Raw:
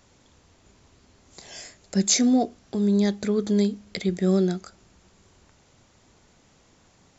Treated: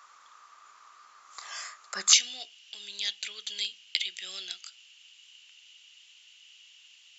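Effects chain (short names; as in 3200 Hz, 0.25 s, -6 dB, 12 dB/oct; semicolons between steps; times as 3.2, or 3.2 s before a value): resonant high-pass 1200 Hz, resonance Q 12, from 2.13 s 2900 Hz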